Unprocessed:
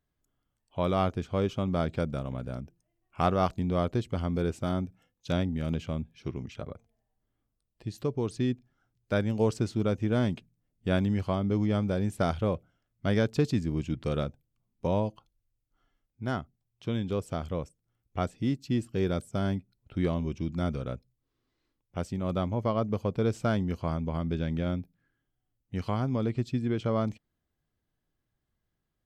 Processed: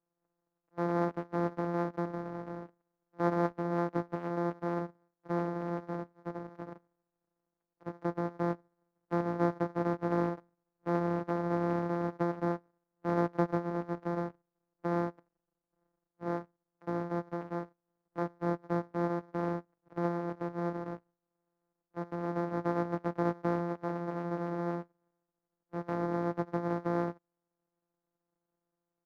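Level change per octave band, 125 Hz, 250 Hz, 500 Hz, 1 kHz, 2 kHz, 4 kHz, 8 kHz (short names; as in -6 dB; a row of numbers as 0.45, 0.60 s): -8.0 dB, -4.0 dB, -3.0 dB, 0.0 dB, -3.0 dB, under -15 dB, under -10 dB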